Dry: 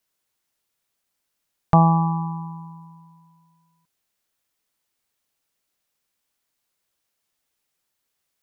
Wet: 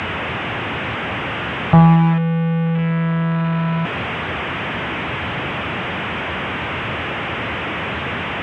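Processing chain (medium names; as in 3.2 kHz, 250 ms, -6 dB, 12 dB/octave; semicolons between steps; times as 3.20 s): one-bit delta coder 16 kbps, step -19.5 dBFS; high-pass 82 Hz 24 dB/octave; bass shelf 170 Hz +11.5 dB; hum notches 50/100/150 Hz; waveshaping leveller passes 1; distance through air 85 m; trim -1 dB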